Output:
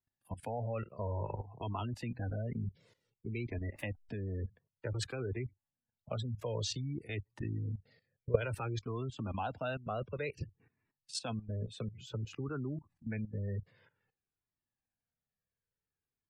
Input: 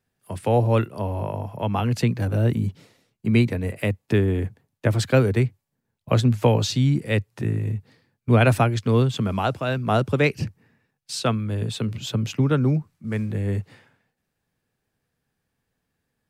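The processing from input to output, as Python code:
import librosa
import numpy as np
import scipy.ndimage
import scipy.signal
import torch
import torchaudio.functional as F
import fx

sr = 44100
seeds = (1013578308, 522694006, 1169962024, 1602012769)

y = fx.delta_hold(x, sr, step_db=-42.5, at=(3.73, 4.34))
y = fx.dynamic_eq(y, sr, hz=150.0, q=1.0, threshold_db=-32.0, ratio=4.0, max_db=-6)
y = fx.spec_gate(y, sr, threshold_db=-25, keep='strong')
y = fx.graphic_eq(y, sr, hz=(250, 500, 1000, 2000, 8000), db=(-6, 8, -11, 4, 6), at=(7.77, 8.43))
y = fx.level_steps(y, sr, step_db=15)
y = fx.comb_cascade(y, sr, direction='falling', hz=0.55)
y = y * 10.0 ** (-2.5 / 20.0)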